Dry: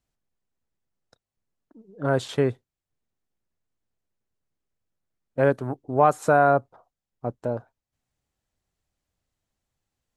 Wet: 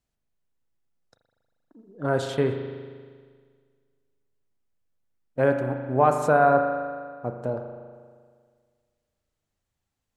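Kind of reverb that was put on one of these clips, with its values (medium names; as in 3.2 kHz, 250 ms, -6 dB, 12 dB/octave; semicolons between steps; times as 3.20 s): spring tank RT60 1.8 s, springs 39 ms, chirp 25 ms, DRR 5 dB; trim -1.5 dB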